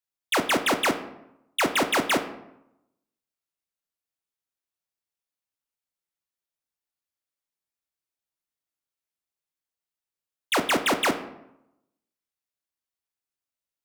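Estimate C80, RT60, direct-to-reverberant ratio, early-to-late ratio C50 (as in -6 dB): 14.0 dB, 0.85 s, 6.5 dB, 11.5 dB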